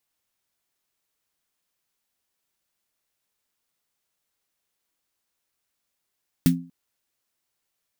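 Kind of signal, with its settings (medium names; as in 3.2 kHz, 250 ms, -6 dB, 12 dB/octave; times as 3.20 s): snare drum length 0.24 s, tones 170 Hz, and 260 Hz, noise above 1.4 kHz, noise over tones -9.5 dB, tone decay 0.38 s, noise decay 0.13 s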